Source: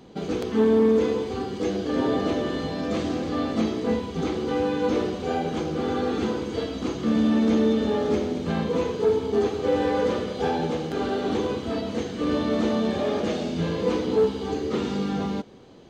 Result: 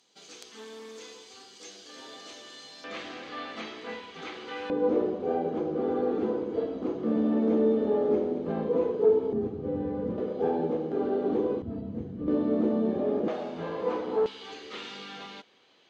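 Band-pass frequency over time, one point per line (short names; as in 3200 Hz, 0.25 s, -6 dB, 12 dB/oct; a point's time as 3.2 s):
band-pass, Q 1.1
6800 Hz
from 2.84 s 2200 Hz
from 4.7 s 450 Hz
from 9.33 s 150 Hz
from 10.18 s 390 Hz
from 11.62 s 120 Hz
from 12.28 s 330 Hz
from 13.28 s 860 Hz
from 14.26 s 2800 Hz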